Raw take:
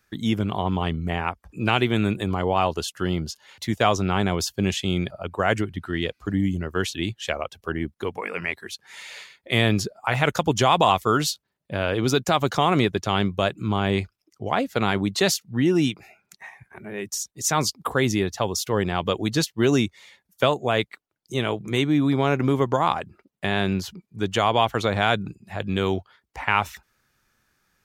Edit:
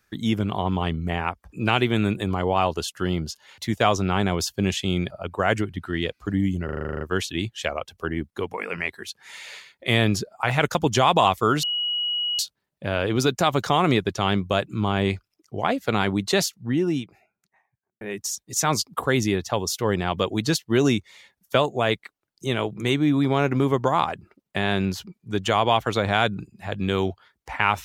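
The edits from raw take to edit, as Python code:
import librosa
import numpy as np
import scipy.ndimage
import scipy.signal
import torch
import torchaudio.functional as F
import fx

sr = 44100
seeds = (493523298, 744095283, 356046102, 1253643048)

y = fx.studio_fade_out(x, sr, start_s=15.06, length_s=1.83)
y = fx.edit(y, sr, fx.stutter(start_s=6.65, slice_s=0.04, count=10),
    fx.insert_tone(at_s=11.27, length_s=0.76, hz=2910.0, db=-22.5), tone=tone)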